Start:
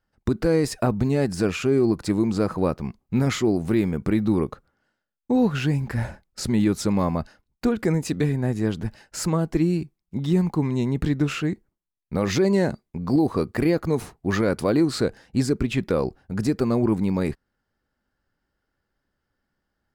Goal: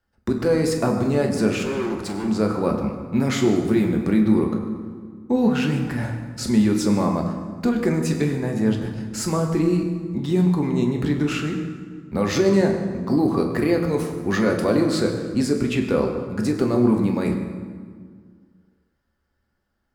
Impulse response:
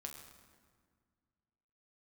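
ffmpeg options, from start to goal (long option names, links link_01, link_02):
-filter_complex "[0:a]acrossover=split=120|1500|4700[link_01][link_02][link_03][link_04];[link_01]acompressor=threshold=-43dB:ratio=6[link_05];[link_05][link_02][link_03][link_04]amix=inputs=4:normalize=0,asettb=1/sr,asplit=3[link_06][link_07][link_08];[link_06]atrim=end=1.584[link_09];[link_07]atrim=start=1.58:end=2.28,asetpts=PTS-STARTPTS,afade=type=in:duration=0.004:curve=qsin,afade=type=out:start_time=0.696:duration=0.004:curve=qsin,asoftclip=type=hard:threshold=-27dB[link_10];[link_08]atrim=start=2.276[link_11];[link_09][link_10]acrossfade=duration=0.004:curve1=hsin:curve2=qsin[link_12];[link_12][link_11]acrossfade=duration=0.004:curve1=qsin:curve2=hsin[link_13];[1:a]atrim=start_sample=2205[link_14];[link_13][link_14]afir=irnorm=-1:irlink=0,volume=6dB"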